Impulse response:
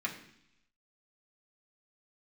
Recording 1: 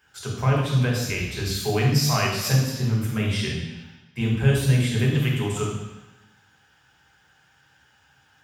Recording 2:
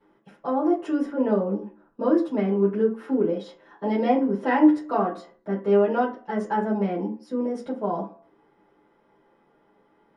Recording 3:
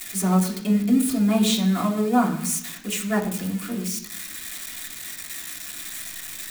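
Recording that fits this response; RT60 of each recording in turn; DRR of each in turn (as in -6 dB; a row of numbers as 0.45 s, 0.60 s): 3; 1.1 s, 0.45 s, 0.70 s; -2.5 dB, -10.0 dB, -3.0 dB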